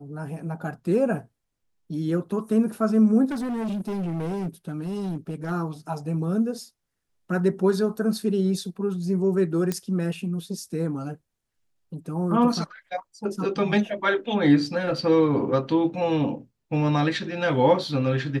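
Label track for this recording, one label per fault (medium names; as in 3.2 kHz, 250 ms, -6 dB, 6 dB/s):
3.310000	5.520000	clipped -25.5 dBFS
9.720000	9.720000	pop -13 dBFS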